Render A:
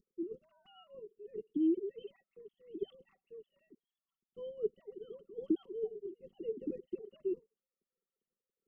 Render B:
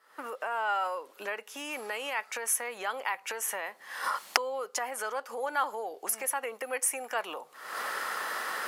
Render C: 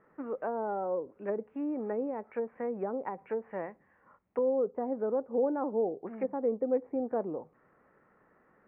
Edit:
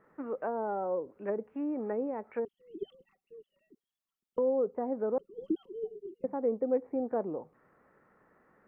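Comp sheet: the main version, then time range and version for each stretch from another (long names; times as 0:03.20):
C
0:02.45–0:04.38: punch in from A
0:05.18–0:06.24: punch in from A
not used: B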